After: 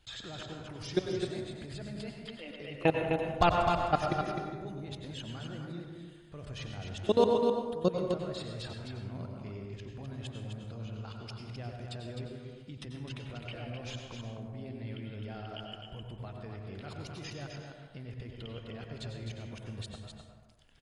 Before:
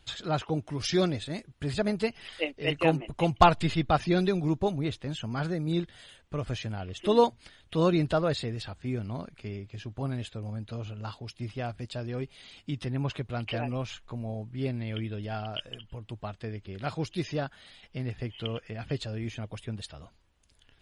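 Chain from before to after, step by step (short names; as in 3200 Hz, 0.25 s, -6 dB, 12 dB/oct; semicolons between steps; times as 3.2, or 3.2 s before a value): dynamic EQ 1000 Hz, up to -5 dB, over -46 dBFS, Q 3.2; level quantiser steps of 22 dB; 7.25–7.91 envelope phaser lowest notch 270 Hz, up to 2000 Hz, full sweep at -35 dBFS; on a send: echo 0.257 s -6 dB; on the sum: plate-style reverb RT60 1.3 s, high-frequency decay 0.4×, pre-delay 80 ms, DRR 2.5 dB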